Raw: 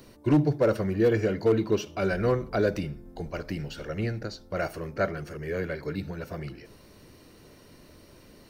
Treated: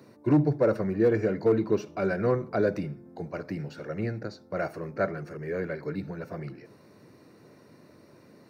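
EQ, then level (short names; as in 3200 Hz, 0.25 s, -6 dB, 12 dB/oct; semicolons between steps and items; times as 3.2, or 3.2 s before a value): HPF 110 Hz 24 dB/oct; bell 3100 Hz -14 dB 0.24 oct; high shelf 4000 Hz -11.5 dB; 0.0 dB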